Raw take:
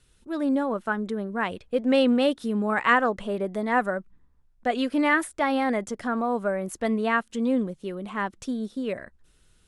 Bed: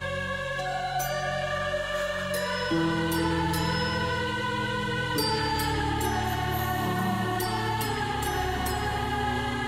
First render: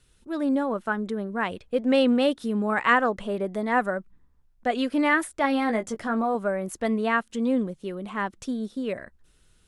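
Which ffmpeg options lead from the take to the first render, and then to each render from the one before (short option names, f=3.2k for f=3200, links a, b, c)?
-filter_complex "[0:a]asettb=1/sr,asplit=3[a][b][c];[a]atrim=end=5.424[d];[b]atrim=start=5.42:end=6.35,asetpts=PTS-STARTPTS,afade=t=in:d=0.004:c=qsin,afade=t=out:st=0.926:d=0.004:c=qsin,asplit=2[e][f];[f]adelay=18,volume=-7.5dB[g];[e][g]amix=inputs=2:normalize=0,atrim=end_sample=41013[h];[c]atrim=start=6.346[i];[d][h]acrossfade=d=0.004:c1=hsin:c2=qsin[j];[j][i]acrossfade=d=0.004:c1=qsin:c2=hsin"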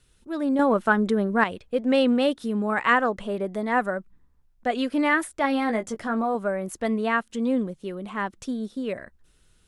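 -filter_complex "[0:a]asettb=1/sr,asplit=3[a][b][c];[a]atrim=end=0.594[d];[b]atrim=start=0.59:end=1.44,asetpts=PTS-STARTPTS,afade=t=in:d=0.004:c=qsin,afade=t=out:st=0.846:d=0.004:c=qsin,acontrast=82[e];[c]atrim=start=1.436[f];[d][e]acrossfade=d=0.004:c1=hsin:c2=qsin[g];[g][f]acrossfade=d=0.004:c1=qsin:c2=hsin"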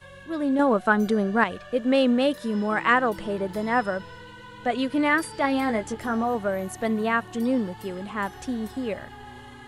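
-filter_complex "[1:a]volume=-15dB[a];[0:a][a]amix=inputs=2:normalize=0"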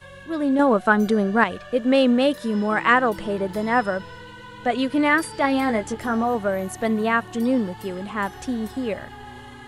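-af "volume=3dB"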